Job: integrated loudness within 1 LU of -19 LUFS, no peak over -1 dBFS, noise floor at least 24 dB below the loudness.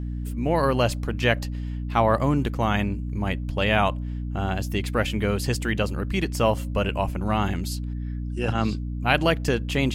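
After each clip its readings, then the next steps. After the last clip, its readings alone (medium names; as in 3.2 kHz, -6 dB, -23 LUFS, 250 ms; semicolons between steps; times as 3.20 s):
hum 60 Hz; highest harmonic 300 Hz; hum level -27 dBFS; loudness -25.0 LUFS; peak level -5.5 dBFS; loudness target -19.0 LUFS
-> hum notches 60/120/180/240/300 Hz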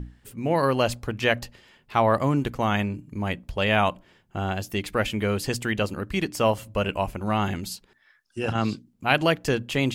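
hum not found; loudness -25.5 LUFS; peak level -5.0 dBFS; loudness target -19.0 LUFS
-> trim +6.5 dB; peak limiter -1 dBFS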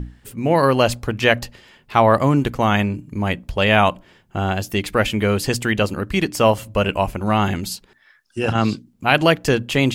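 loudness -19.0 LUFS; peak level -1.0 dBFS; noise floor -57 dBFS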